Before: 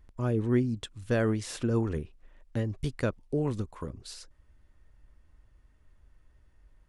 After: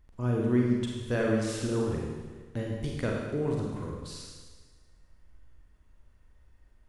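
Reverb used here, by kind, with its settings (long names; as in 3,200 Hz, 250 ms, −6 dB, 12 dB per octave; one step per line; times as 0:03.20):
four-comb reverb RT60 1.4 s, combs from 33 ms, DRR −2 dB
level −3 dB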